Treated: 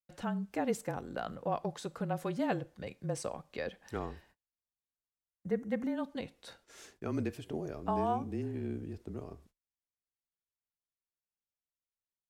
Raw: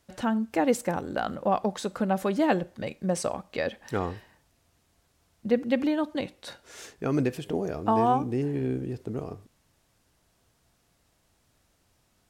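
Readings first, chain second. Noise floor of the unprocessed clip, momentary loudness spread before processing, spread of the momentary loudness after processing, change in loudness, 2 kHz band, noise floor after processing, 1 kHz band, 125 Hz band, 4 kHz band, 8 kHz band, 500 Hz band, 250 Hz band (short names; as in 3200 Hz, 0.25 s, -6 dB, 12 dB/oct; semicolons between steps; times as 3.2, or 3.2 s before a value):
-69 dBFS, 13 LU, 13 LU, -9.0 dB, -9.0 dB, under -85 dBFS, -9.5 dB, -7.0 dB, -9.5 dB, -9.0 dB, -9.0 dB, -9.0 dB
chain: gate -53 dBFS, range -31 dB; frequency shift -28 Hz; spectral gain 4.59–5.96, 2200–5500 Hz -10 dB; gain -9 dB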